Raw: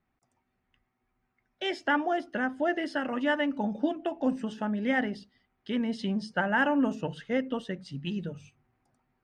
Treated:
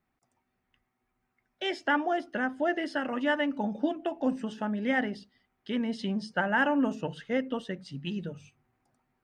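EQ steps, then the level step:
low-shelf EQ 130 Hz −4 dB
0.0 dB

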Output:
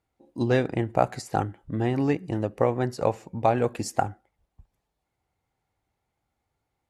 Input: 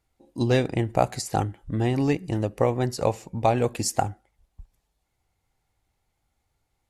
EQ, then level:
high-pass filter 120 Hz 6 dB per octave
dynamic equaliser 1,500 Hz, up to +5 dB, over −44 dBFS, Q 2.3
high-shelf EQ 2,800 Hz −9.5 dB
0.0 dB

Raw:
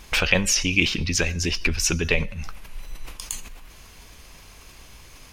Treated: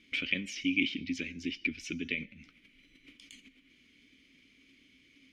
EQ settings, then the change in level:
formant filter i
notch filter 1,600 Hz, Q 18
0.0 dB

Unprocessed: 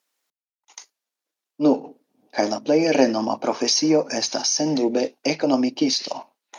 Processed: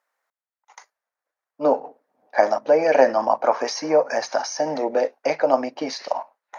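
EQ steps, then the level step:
flat-topped bell 1,000 Hz +16 dB 2.4 octaves
−10.0 dB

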